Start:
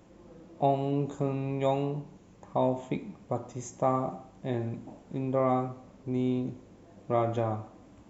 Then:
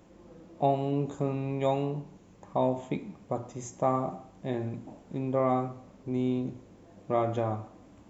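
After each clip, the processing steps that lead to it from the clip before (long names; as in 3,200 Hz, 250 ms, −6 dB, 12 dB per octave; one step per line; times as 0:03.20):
mains-hum notches 60/120 Hz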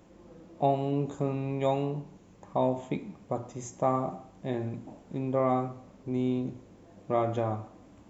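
no processing that can be heard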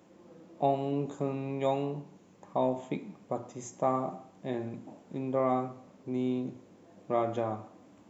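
high-pass filter 150 Hz 12 dB per octave
level −1.5 dB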